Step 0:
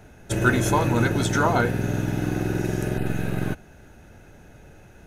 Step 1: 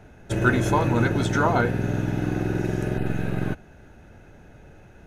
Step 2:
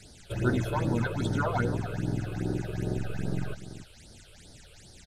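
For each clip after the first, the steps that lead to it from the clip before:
high shelf 5600 Hz -11 dB
echo 0.294 s -12.5 dB; band noise 1600–9100 Hz -48 dBFS; phaser stages 8, 2.5 Hz, lowest notch 230–2600 Hz; gain -5.5 dB

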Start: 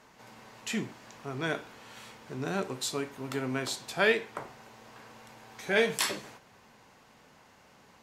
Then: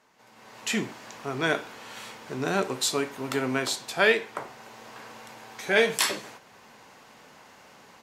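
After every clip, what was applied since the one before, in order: low shelf 150 Hz -10.5 dB; AGC gain up to 13 dB; gain -5.5 dB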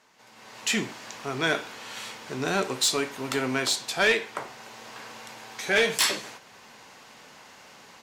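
bell 4800 Hz +5.5 dB 2.8 oct; soft clip -14.5 dBFS, distortion -14 dB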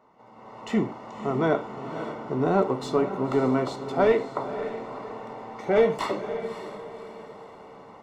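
polynomial smoothing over 65 samples; diffused feedback echo 0.564 s, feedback 41%, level -10.5 dB; gain +6 dB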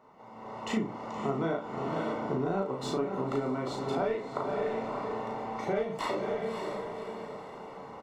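compressor 12:1, threshold -29 dBFS, peak gain reduction 15 dB; doubler 36 ms -2.5 dB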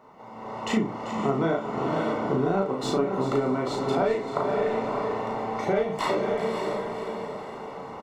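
echo 0.39 s -12.5 dB; gain +6 dB

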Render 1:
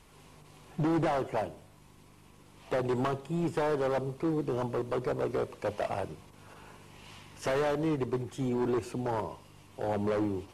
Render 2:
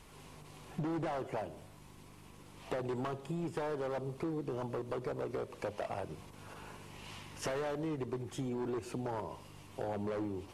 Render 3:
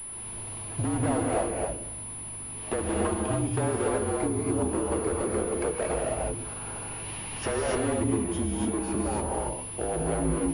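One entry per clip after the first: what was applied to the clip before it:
compressor, threshold -37 dBFS, peak gain reduction 10.5 dB; gain +1.5 dB
non-linear reverb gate 0.31 s rising, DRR -1.5 dB; frequency shift -44 Hz; pulse-width modulation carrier 10000 Hz; gain +6.5 dB

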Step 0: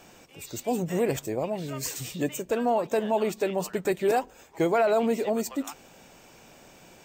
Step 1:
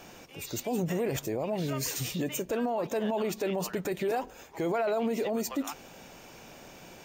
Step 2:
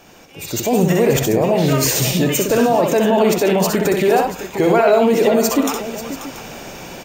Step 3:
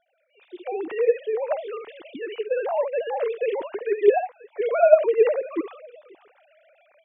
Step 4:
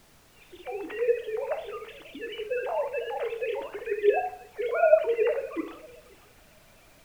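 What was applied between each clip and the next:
notch 7900 Hz, Q 6.2; limiter -25.5 dBFS, peak gain reduction 11.5 dB; gain +3 dB
AGC gain up to 12 dB; on a send: tapped delay 64/94/536/683 ms -4.5/-17/-12.5/-16 dB; on the sum: gain +2.5 dB
sine-wave speech; upward expander 1.5:1, over -34 dBFS; gain -4.5 dB
tilt shelf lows -5 dB, about 1400 Hz; FDN reverb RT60 0.58 s, low-frequency decay 0.9×, high-frequency decay 0.75×, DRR 6.5 dB; added noise pink -54 dBFS; gain -3 dB

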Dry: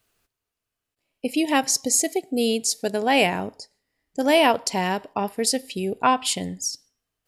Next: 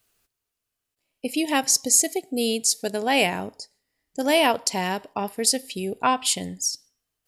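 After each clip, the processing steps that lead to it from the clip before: high shelf 3900 Hz +6.5 dB; gain -2.5 dB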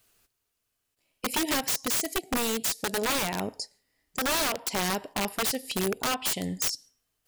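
compressor 4:1, threshold -27 dBFS, peak gain reduction 11.5 dB; wrapped overs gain 24 dB; gain +3 dB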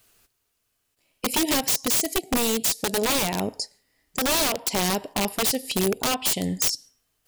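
dynamic EQ 1500 Hz, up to -6 dB, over -44 dBFS, Q 1.2; gain +5.5 dB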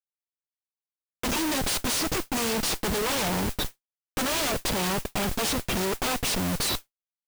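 nonlinear frequency compression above 2100 Hz 1.5:1; Schmitt trigger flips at -29.5 dBFS; modulation noise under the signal 10 dB

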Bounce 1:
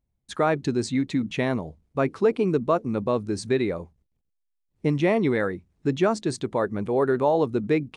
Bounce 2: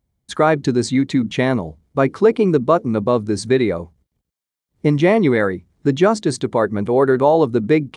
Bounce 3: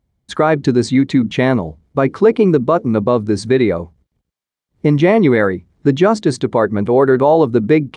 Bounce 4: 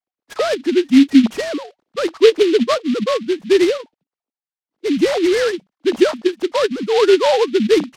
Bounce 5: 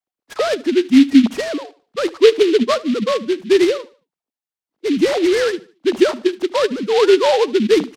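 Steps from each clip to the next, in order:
HPF 45 Hz; notch 2600 Hz, Q 13; gain +7.5 dB
high shelf 6600 Hz -10 dB; maximiser +5 dB; gain -1 dB
sine-wave speech; noise-modulated delay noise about 2800 Hz, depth 0.062 ms; gain -2 dB
feedback echo 75 ms, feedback 34%, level -20.5 dB

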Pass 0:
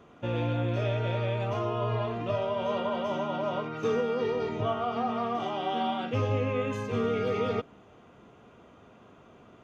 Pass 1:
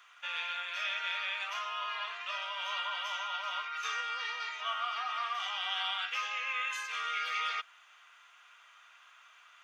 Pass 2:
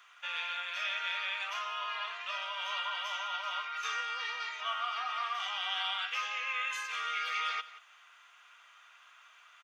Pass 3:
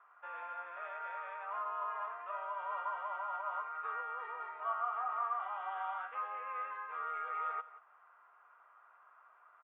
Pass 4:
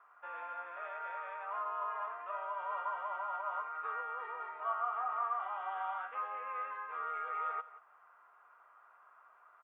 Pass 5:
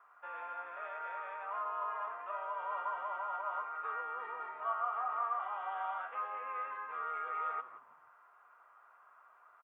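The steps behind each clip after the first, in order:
HPF 1400 Hz 24 dB/oct; gain +7 dB
echo 0.176 s -17 dB
LPF 1200 Hz 24 dB/oct; gain +3 dB
low shelf 450 Hz +5 dB
frequency-shifting echo 0.162 s, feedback 40%, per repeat -110 Hz, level -19 dB

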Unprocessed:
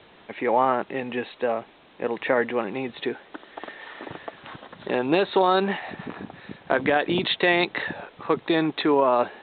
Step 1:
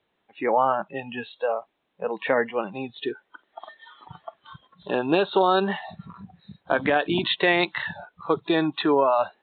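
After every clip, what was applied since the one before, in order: spectral noise reduction 22 dB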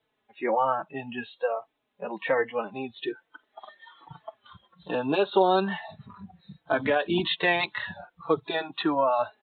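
endless flanger 4.1 ms -1.2 Hz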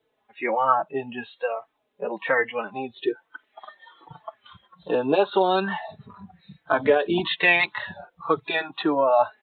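LFO bell 1 Hz 390–2500 Hz +11 dB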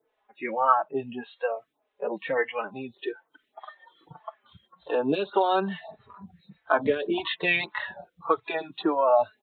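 photocell phaser 1.7 Hz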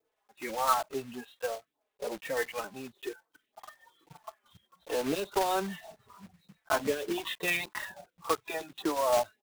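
block floating point 3-bit; gain -6 dB

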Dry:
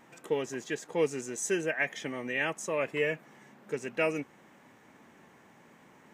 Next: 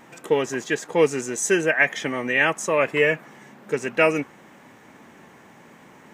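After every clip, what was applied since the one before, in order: dynamic EQ 1300 Hz, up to +4 dB, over -46 dBFS, Q 0.92; gain +9 dB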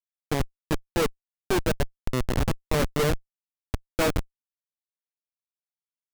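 LFO low-pass saw down 1.5 Hz 730–2400 Hz; harmonic-percussive split harmonic +6 dB; Schmitt trigger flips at -11 dBFS; gain -2 dB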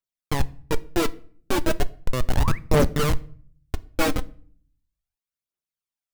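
painted sound rise, 2.35–2.59, 500–2500 Hz -38 dBFS; phaser 0.36 Hz, delay 4 ms, feedback 55%; on a send at -16 dB: reverb RT60 0.50 s, pre-delay 5 ms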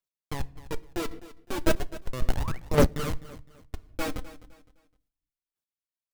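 chopper 1.8 Hz, depth 65%, duty 15%; feedback echo 0.256 s, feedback 31%, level -17 dB

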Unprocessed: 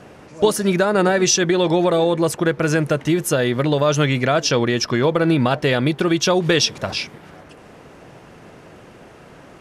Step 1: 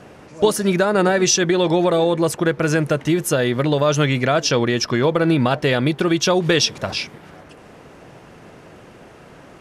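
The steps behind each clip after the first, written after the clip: nothing audible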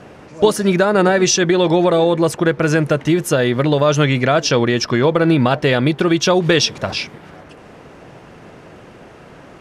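high shelf 8100 Hz -7.5 dB; gain +3 dB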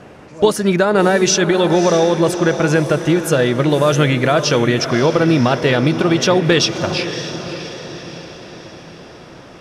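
diffused feedback echo 0.594 s, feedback 52%, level -10 dB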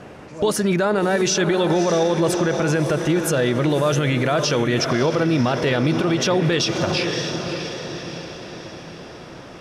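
limiter -11 dBFS, peak gain reduction 9.5 dB

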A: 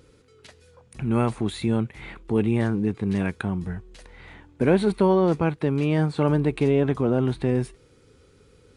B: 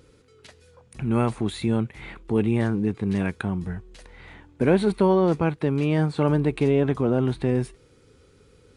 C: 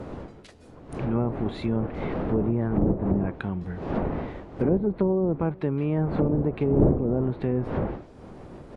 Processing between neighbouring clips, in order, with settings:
nothing audible
wind noise 430 Hz -27 dBFS; treble ducked by the level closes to 500 Hz, closed at -15 dBFS; outdoor echo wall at 71 m, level -25 dB; gain -3 dB

